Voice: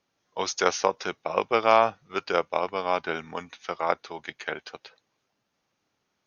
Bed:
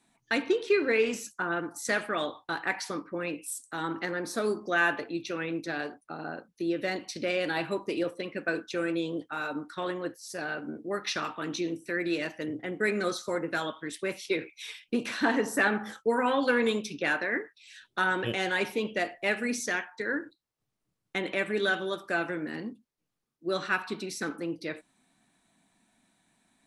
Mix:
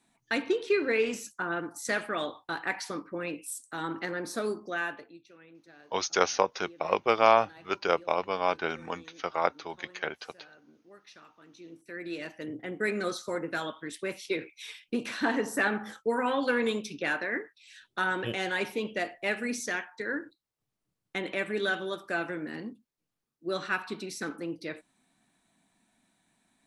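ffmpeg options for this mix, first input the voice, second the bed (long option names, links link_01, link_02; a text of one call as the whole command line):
ffmpeg -i stem1.wav -i stem2.wav -filter_complex "[0:a]adelay=5550,volume=-1.5dB[link_01];[1:a]volume=18dB,afade=type=out:start_time=4.34:duration=0.87:silence=0.1,afade=type=in:start_time=11.55:duration=1.18:silence=0.105925[link_02];[link_01][link_02]amix=inputs=2:normalize=0" out.wav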